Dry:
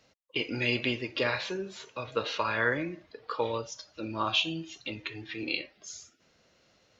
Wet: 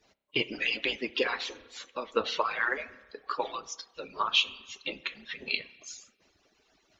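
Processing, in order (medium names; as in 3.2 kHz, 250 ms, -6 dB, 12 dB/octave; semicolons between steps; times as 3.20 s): harmonic-percussive separation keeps percussive; spring tank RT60 1.2 s, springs 31 ms, chirp 20 ms, DRR 16.5 dB; trim +3 dB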